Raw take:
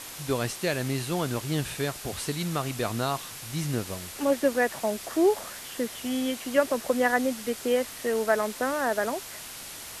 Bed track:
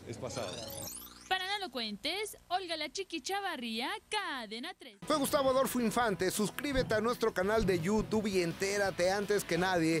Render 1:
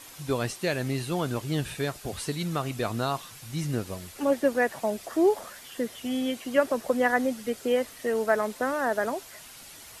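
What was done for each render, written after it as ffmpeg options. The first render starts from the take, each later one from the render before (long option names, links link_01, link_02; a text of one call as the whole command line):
ffmpeg -i in.wav -af "afftdn=noise_reduction=8:noise_floor=-41" out.wav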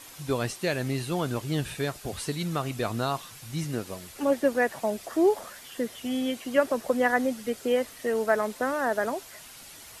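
ffmpeg -i in.wav -filter_complex "[0:a]asettb=1/sr,asplit=3[link_01][link_02][link_03];[link_01]atrim=end=3.644[link_04];[link_02]atrim=start=3.64:end=4.1,asetpts=PTS-STARTPTS,afade=type=in:duration=0.004:curve=qsin,afade=type=out:start_time=0.456:duration=0.004:curve=qsin,highpass=frequency=170:poles=1[link_05];[link_03]atrim=start=4.096[link_06];[link_04][link_05]acrossfade=duration=0.004:curve1=hsin:curve2=qsin[link_07];[link_07][link_06]acrossfade=duration=0.004:curve1=qsin:curve2=hsin" out.wav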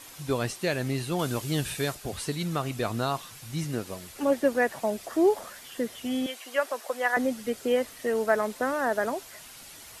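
ffmpeg -i in.wav -filter_complex "[0:a]asettb=1/sr,asplit=3[link_01][link_02][link_03];[link_01]atrim=end=1.194[link_04];[link_02]atrim=start=1.19:end=1.95,asetpts=PTS-STARTPTS,afade=type=in:duration=0.004:curve=qsin,afade=type=out:start_time=0.756:duration=0.004:curve=qsin,highshelf=frequency=3700:gain=7[link_05];[link_03]atrim=start=1.946[link_06];[link_04][link_05]acrossfade=duration=0.004:curve1=hsin:curve2=qsin[link_07];[link_07][link_06]acrossfade=duration=0.004:curve1=qsin:curve2=hsin,asettb=1/sr,asplit=3[link_08][link_09][link_10];[link_08]atrim=end=6.264[link_11];[link_09]atrim=start=6.26:end=7.17,asetpts=PTS-STARTPTS,afade=type=in:duration=0.004:curve=qsin,afade=type=out:start_time=0.906:duration=0.004:curve=qsin,highpass=670[link_12];[link_10]atrim=start=7.166[link_13];[link_11][link_12]acrossfade=duration=0.004:curve1=hsin:curve2=qsin[link_14];[link_14][link_13]acrossfade=duration=0.004:curve1=qsin:curve2=hsin" out.wav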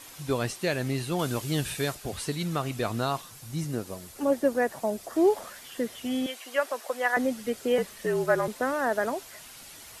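ffmpeg -i in.wav -filter_complex "[0:a]asettb=1/sr,asplit=3[link_01][link_02][link_03];[link_01]atrim=end=3.214[link_04];[link_02]atrim=start=3.21:end=5.16,asetpts=PTS-STARTPTS,afade=type=in:duration=0.004:curve=qsin,afade=type=out:start_time=1.946:duration=0.004:curve=qsin,equalizer=frequency=2500:width_type=o:width=1.8:gain=-5.5[link_05];[link_03]atrim=start=5.156[link_06];[link_04][link_05]acrossfade=duration=0.004:curve1=hsin:curve2=qsin[link_07];[link_07][link_06]acrossfade=duration=0.004:curve1=qsin:curve2=hsin,asettb=1/sr,asplit=3[link_08][link_09][link_10];[link_08]atrim=end=7.784[link_11];[link_09]atrim=start=7.78:end=8.48,asetpts=PTS-STARTPTS,afade=type=in:duration=0.004:curve=qsin,afade=type=out:start_time=0.696:duration=0.004:curve=qsin,afreqshift=-53[link_12];[link_10]atrim=start=8.476[link_13];[link_11][link_12]acrossfade=duration=0.004:curve1=hsin:curve2=qsin[link_14];[link_14][link_13]acrossfade=duration=0.004:curve1=qsin:curve2=hsin" out.wav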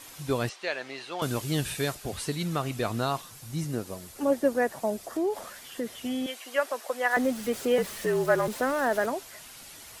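ffmpeg -i in.wav -filter_complex "[0:a]asettb=1/sr,asplit=3[link_01][link_02][link_03];[link_01]atrim=end=0.494[link_04];[link_02]atrim=start=0.49:end=1.22,asetpts=PTS-STARTPTS,afade=type=in:duration=0.004:curve=qsin,afade=type=out:start_time=0.726:duration=0.004:curve=qsin,highpass=610,lowpass=4400[link_05];[link_03]atrim=start=1.216[link_06];[link_04][link_05]acrossfade=duration=0.004:curve1=hsin:curve2=qsin[link_07];[link_07][link_06]acrossfade=duration=0.004:curve1=qsin:curve2=hsin,asettb=1/sr,asplit=3[link_08][link_09][link_10];[link_08]atrim=end=5.004[link_11];[link_09]atrim=start=5:end=6.44,asetpts=PTS-STARTPTS,afade=type=in:duration=0.004:curve=qsin,afade=type=out:start_time=1.436:duration=0.004:curve=qsin,acompressor=threshold=-27dB:ratio=2.5:attack=3.2:release=140:knee=1:detection=peak[link_12];[link_10]atrim=start=6.436[link_13];[link_11][link_12]acrossfade=duration=0.004:curve1=hsin:curve2=qsin[link_14];[link_14][link_13]acrossfade=duration=0.004:curve1=qsin:curve2=hsin,asettb=1/sr,asplit=3[link_15][link_16][link_17];[link_15]atrim=end=7.114[link_18];[link_16]atrim=start=7.11:end=9.06,asetpts=PTS-STARTPTS,afade=type=in:duration=0.004:curve=qsin,afade=type=out:start_time=1.946:duration=0.004:curve=qsin,aeval=exprs='val(0)+0.5*0.0126*sgn(val(0))':channel_layout=same[link_19];[link_17]atrim=start=9.056[link_20];[link_18][link_19]acrossfade=duration=0.004:curve1=hsin:curve2=qsin[link_21];[link_21][link_20]acrossfade=duration=0.004:curve1=qsin:curve2=hsin" out.wav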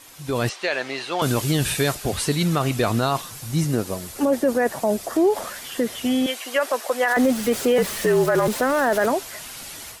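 ffmpeg -i in.wav -af "alimiter=limit=-21dB:level=0:latency=1:release=12,dynaudnorm=framelen=230:gausssize=3:maxgain=10dB" out.wav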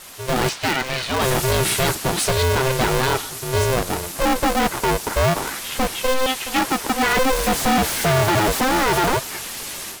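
ffmpeg -i in.wav -af "aeval=exprs='0.299*(cos(1*acos(clip(val(0)/0.299,-1,1)))-cos(1*PI/2))+0.0596*(cos(5*acos(clip(val(0)/0.299,-1,1)))-cos(5*PI/2))':channel_layout=same,aeval=exprs='val(0)*sgn(sin(2*PI*260*n/s))':channel_layout=same" out.wav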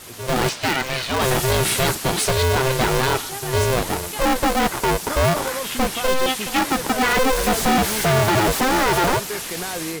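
ffmpeg -i in.wav -i bed.wav -filter_complex "[1:a]volume=0dB[link_01];[0:a][link_01]amix=inputs=2:normalize=0" out.wav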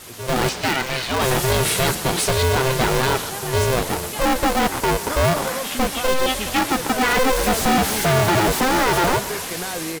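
ffmpeg -i in.wav -filter_complex "[0:a]asplit=8[link_01][link_02][link_03][link_04][link_05][link_06][link_07][link_08];[link_02]adelay=130,afreqshift=37,volume=-15.5dB[link_09];[link_03]adelay=260,afreqshift=74,volume=-19.4dB[link_10];[link_04]adelay=390,afreqshift=111,volume=-23.3dB[link_11];[link_05]adelay=520,afreqshift=148,volume=-27.1dB[link_12];[link_06]adelay=650,afreqshift=185,volume=-31dB[link_13];[link_07]adelay=780,afreqshift=222,volume=-34.9dB[link_14];[link_08]adelay=910,afreqshift=259,volume=-38.8dB[link_15];[link_01][link_09][link_10][link_11][link_12][link_13][link_14][link_15]amix=inputs=8:normalize=0" out.wav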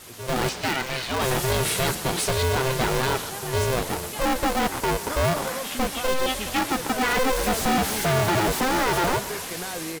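ffmpeg -i in.wav -af "volume=-4.5dB" out.wav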